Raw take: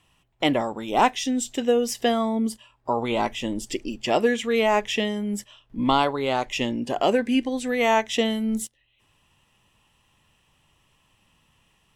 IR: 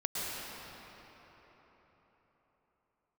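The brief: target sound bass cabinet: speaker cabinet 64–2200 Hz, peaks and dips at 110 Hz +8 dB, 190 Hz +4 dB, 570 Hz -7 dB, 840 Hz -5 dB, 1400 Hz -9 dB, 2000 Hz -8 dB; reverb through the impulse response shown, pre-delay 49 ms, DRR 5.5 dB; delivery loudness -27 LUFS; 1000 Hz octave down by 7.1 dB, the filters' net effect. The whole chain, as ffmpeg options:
-filter_complex "[0:a]equalizer=f=1k:t=o:g=-3,asplit=2[a][b];[1:a]atrim=start_sample=2205,adelay=49[c];[b][c]afir=irnorm=-1:irlink=0,volume=-12dB[d];[a][d]amix=inputs=2:normalize=0,highpass=f=64:w=0.5412,highpass=f=64:w=1.3066,equalizer=f=110:t=q:w=4:g=8,equalizer=f=190:t=q:w=4:g=4,equalizer=f=570:t=q:w=4:g=-7,equalizer=f=840:t=q:w=4:g=-5,equalizer=f=1.4k:t=q:w=4:g=-9,equalizer=f=2k:t=q:w=4:g=-8,lowpass=f=2.2k:w=0.5412,lowpass=f=2.2k:w=1.3066,volume=-1dB"

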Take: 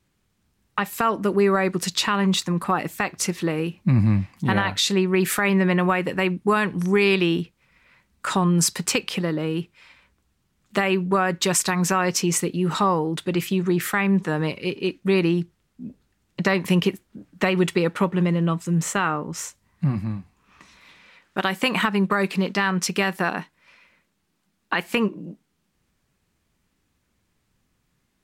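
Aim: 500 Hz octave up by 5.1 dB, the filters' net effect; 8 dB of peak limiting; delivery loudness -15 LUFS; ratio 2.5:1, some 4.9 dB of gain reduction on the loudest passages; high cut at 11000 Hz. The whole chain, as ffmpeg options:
-af "lowpass=11k,equalizer=f=500:t=o:g=7,acompressor=threshold=-19dB:ratio=2.5,volume=10.5dB,alimiter=limit=-4.5dB:level=0:latency=1"

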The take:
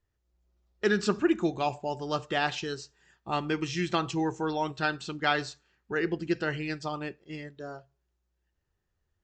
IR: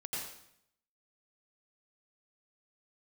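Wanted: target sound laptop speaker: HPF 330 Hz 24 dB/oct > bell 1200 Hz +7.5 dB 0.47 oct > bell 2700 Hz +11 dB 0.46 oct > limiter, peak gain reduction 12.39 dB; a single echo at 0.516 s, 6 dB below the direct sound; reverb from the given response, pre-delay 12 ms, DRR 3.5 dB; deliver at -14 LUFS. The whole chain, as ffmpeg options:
-filter_complex "[0:a]aecho=1:1:516:0.501,asplit=2[a][b];[1:a]atrim=start_sample=2205,adelay=12[c];[b][c]afir=irnorm=-1:irlink=0,volume=-5dB[d];[a][d]amix=inputs=2:normalize=0,highpass=f=330:w=0.5412,highpass=f=330:w=1.3066,equalizer=f=1.2k:t=o:w=0.47:g=7.5,equalizer=f=2.7k:t=o:w=0.46:g=11,volume=16dB,alimiter=limit=-4.5dB:level=0:latency=1"

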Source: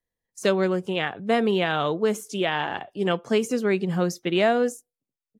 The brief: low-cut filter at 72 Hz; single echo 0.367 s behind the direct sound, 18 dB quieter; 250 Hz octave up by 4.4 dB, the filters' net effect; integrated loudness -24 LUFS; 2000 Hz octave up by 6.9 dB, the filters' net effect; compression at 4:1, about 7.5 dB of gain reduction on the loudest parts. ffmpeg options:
-af "highpass=72,equalizer=f=250:t=o:g=6,equalizer=f=2k:t=o:g=8.5,acompressor=threshold=-22dB:ratio=4,aecho=1:1:367:0.126,volume=2.5dB"

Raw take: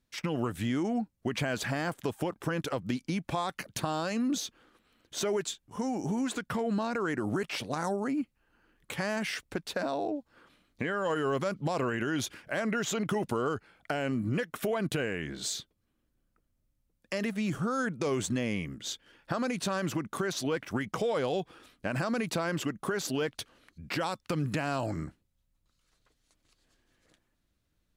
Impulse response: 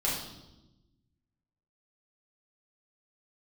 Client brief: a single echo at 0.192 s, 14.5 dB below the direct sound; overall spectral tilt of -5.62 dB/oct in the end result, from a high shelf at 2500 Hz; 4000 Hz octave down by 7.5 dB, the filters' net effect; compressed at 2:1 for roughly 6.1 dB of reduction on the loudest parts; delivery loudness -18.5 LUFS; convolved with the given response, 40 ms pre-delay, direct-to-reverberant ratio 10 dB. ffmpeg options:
-filter_complex "[0:a]highshelf=f=2.5k:g=-6.5,equalizer=f=4k:t=o:g=-4,acompressor=threshold=-38dB:ratio=2,aecho=1:1:192:0.188,asplit=2[a][b];[1:a]atrim=start_sample=2205,adelay=40[c];[b][c]afir=irnorm=-1:irlink=0,volume=-18dB[d];[a][d]amix=inputs=2:normalize=0,volume=20dB"

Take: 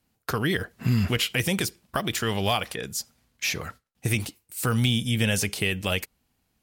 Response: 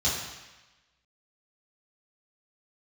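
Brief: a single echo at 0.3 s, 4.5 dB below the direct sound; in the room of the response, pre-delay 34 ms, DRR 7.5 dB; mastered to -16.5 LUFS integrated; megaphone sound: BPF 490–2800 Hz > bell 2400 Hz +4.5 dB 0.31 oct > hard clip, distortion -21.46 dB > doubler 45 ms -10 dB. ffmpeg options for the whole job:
-filter_complex "[0:a]aecho=1:1:300:0.596,asplit=2[a][b];[1:a]atrim=start_sample=2205,adelay=34[c];[b][c]afir=irnorm=-1:irlink=0,volume=-18dB[d];[a][d]amix=inputs=2:normalize=0,highpass=490,lowpass=2.8k,equalizer=f=2.4k:t=o:w=0.31:g=4.5,asoftclip=type=hard:threshold=-17dB,asplit=2[e][f];[f]adelay=45,volume=-10dB[g];[e][g]amix=inputs=2:normalize=0,volume=12dB"

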